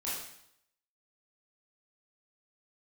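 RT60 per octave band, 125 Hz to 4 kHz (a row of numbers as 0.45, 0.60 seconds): 0.70, 0.70, 0.70, 0.75, 0.70, 0.70 seconds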